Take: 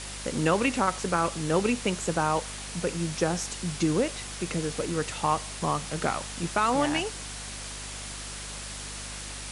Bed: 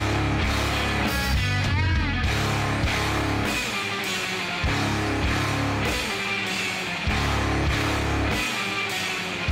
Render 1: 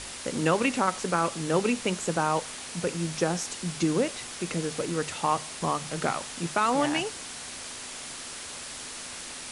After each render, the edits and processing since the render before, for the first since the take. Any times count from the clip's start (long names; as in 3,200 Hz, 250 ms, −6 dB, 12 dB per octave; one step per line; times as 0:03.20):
mains-hum notches 50/100/150/200 Hz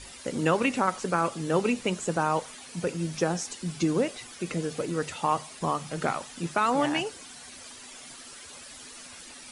broadband denoise 11 dB, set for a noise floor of −40 dBFS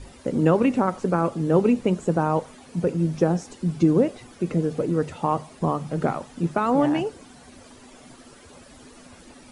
tilt shelving filter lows +9 dB, about 1,100 Hz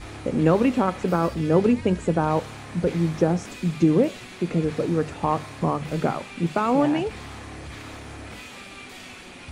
mix in bed −15.5 dB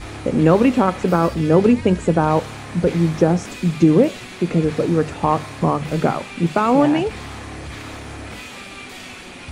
level +5.5 dB
brickwall limiter −2 dBFS, peak gain reduction 1.5 dB